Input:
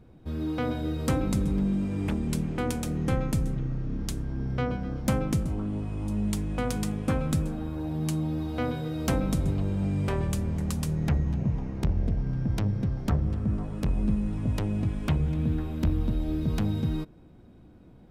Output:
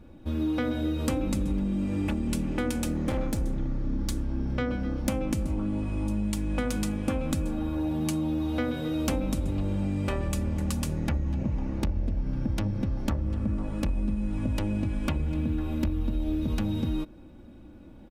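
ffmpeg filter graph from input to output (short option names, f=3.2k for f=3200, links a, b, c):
-filter_complex "[0:a]asettb=1/sr,asplit=3[a][b][c];[a]atrim=end=2.934[d];[b]atrim=start=2.93:end=4.16,asetpts=PTS-STARTPTS,afade=t=in:d=0.004:c=qsin,afade=t=out:st=1.226:d=0.004:c=qsin,bandreject=f=2.7k:w=5.2,asoftclip=type=hard:threshold=-24.5dB[e];[c]atrim=start=4.156[f];[d][e]acrossfade=d=0.004:c1=hsin:c2=qsin[g];[g][f]acrossfade=d=0.004:c1=qsin:c2=hsin,equalizer=f=2.6k:t=o:w=0.26:g=3,aecho=1:1:3.5:0.55,acompressor=threshold=-27dB:ratio=6,volume=3dB"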